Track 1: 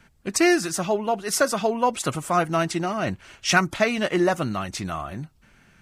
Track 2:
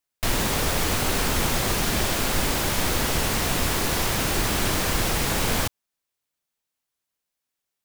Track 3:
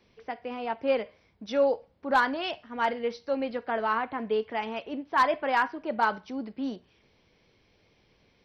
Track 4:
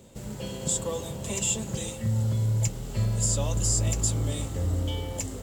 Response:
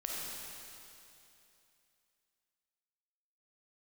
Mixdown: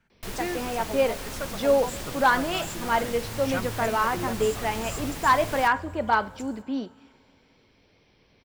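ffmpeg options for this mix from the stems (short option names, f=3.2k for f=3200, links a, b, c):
-filter_complex "[0:a]highshelf=f=6k:g=-10,volume=-13.5dB[a];[1:a]volume=-13dB[b];[2:a]adelay=100,volume=2.5dB,asplit=2[c][d];[d]volume=-24dB[e];[3:a]adelay=1200,volume=-15dB,asplit=2[f][g];[g]volume=-18dB[h];[4:a]atrim=start_sample=2205[i];[e][h]amix=inputs=2:normalize=0[j];[j][i]afir=irnorm=-1:irlink=0[k];[a][b][c][f][k]amix=inputs=5:normalize=0"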